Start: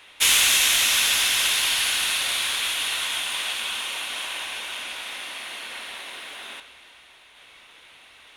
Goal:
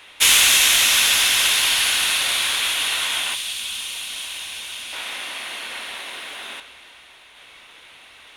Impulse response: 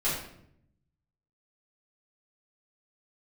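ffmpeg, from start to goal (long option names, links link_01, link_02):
-filter_complex "[0:a]asettb=1/sr,asplit=3[link_01][link_02][link_03];[link_01]atrim=end=3.344[link_04];[link_02]atrim=start=3.34:end=4.93,asetpts=PTS-STARTPTS,afade=type=in:duration=0.004:curve=qsin,afade=type=out:start_time=1.586:duration=0.004:curve=qsin,acrossover=split=190|3000[link_05][link_06][link_07];[link_06]acompressor=threshold=-45dB:ratio=6[link_08];[link_05][link_08][link_07]amix=inputs=3:normalize=0[link_09];[link_03]atrim=start=4.926[link_10];[link_04][link_09]acrossfade=duration=0.004:curve1=hsin:curve2=qsin[link_11];[link_11][link_10]acrossfade=duration=0.004:curve1=qsin:curve2=hsin,volume=4dB"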